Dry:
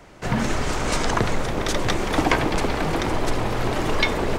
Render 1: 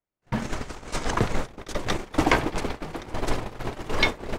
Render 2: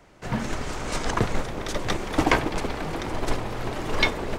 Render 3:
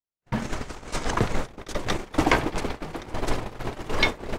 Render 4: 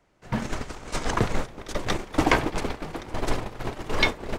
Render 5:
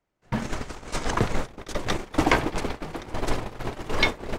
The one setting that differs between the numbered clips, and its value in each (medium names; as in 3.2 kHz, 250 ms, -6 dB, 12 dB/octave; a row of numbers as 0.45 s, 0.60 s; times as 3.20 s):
gate, range: -45 dB, -7 dB, -58 dB, -19 dB, -33 dB